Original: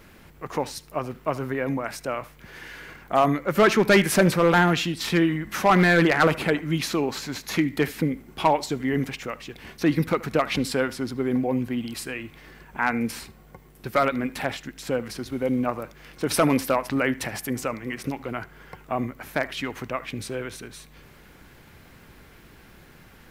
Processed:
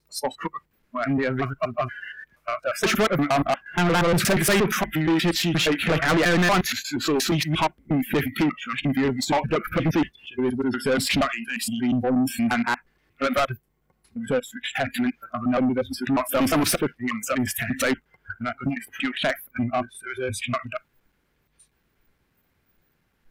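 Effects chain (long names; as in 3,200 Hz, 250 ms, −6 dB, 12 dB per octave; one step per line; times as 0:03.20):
slices reordered back to front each 118 ms, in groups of 8
noise reduction from a noise print of the clip's start 27 dB
soft clipping −24.5 dBFS, distortion −6 dB
level +7.5 dB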